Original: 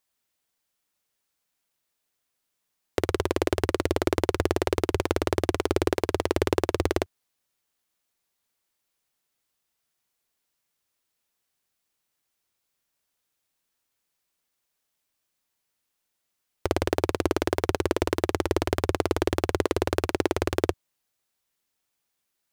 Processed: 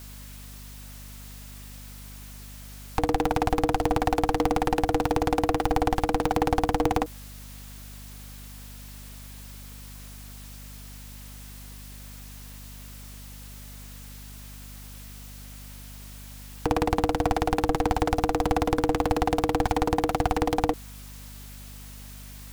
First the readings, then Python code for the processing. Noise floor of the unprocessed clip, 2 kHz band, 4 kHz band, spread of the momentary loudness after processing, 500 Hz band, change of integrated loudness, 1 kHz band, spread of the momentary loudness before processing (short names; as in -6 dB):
-80 dBFS, -0.5 dB, -1.0 dB, 18 LU, -1.5 dB, +1.0 dB, +7.0 dB, 3 LU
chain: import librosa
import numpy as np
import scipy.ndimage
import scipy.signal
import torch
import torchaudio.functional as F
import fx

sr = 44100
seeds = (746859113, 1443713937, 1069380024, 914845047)

y = fx.power_curve(x, sr, exponent=0.5)
y = y * np.sin(2.0 * np.pi * 390.0 * np.arange(len(y)) / sr)
y = fx.add_hum(y, sr, base_hz=50, snr_db=15)
y = F.gain(torch.from_numpy(y), -1.5).numpy()